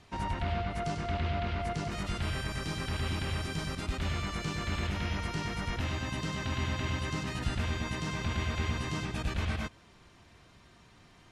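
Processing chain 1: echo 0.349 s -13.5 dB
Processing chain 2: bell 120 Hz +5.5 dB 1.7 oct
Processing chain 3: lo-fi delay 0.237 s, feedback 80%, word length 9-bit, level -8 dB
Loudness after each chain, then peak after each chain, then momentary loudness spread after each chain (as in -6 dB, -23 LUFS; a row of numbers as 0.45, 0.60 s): -34.0, -31.5, -33.5 LUFS; -18.0, -15.5, -17.5 dBFS; 2, 3, 9 LU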